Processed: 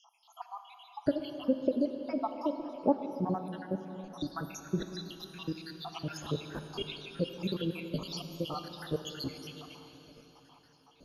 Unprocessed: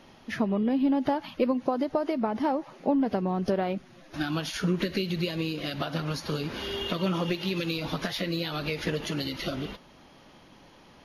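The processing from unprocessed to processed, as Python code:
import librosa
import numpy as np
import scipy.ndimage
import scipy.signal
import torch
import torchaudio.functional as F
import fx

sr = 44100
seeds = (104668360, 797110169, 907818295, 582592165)

y = fx.spec_dropout(x, sr, seeds[0], share_pct=83)
y = fx.peak_eq(y, sr, hz=2000.0, db=-12.5, octaves=0.37)
y = fx.rev_plate(y, sr, seeds[1], rt60_s=4.1, hf_ratio=0.95, predelay_ms=0, drr_db=7.0)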